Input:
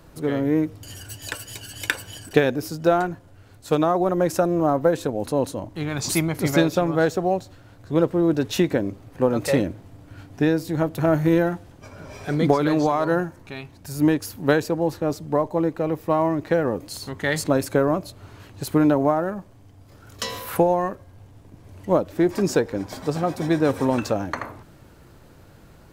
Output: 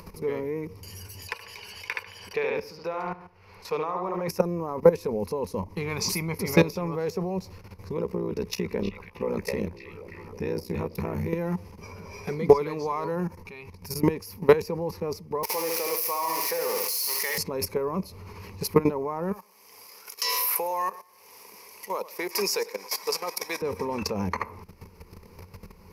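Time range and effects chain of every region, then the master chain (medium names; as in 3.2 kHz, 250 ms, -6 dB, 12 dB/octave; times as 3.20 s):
1.27–4.28 s: three-band isolator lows -13 dB, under 520 Hz, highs -13 dB, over 4.7 kHz + bucket-brigade echo 73 ms, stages 2048, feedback 34%, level -5.5 dB
7.97–11.29 s: AM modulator 62 Hz, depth 80% + repeats whose band climbs or falls 317 ms, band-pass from 2.8 kHz, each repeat -0.7 oct, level -7 dB
15.43–17.38 s: zero-crossing glitches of -16.5 dBFS + high-pass 630 Hz + flutter echo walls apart 11.5 m, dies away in 0.67 s
19.32–23.62 s: high-pass 450 Hz + tilt EQ +3.5 dB/octave + feedback delay 106 ms, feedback 37%, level -19 dB
whole clip: level held to a coarse grid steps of 16 dB; rippled EQ curve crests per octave 0.84, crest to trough 14 dB; upward compressor, threshold -39 dBFS; trim +2 dB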